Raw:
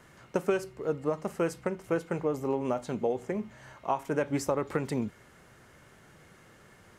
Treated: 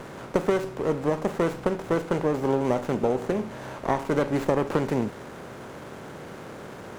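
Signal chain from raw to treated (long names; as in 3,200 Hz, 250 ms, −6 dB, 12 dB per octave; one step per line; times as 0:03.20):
compressor on every frequency bin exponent 0.6
windowed peak hold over 9 samples
level +2 dB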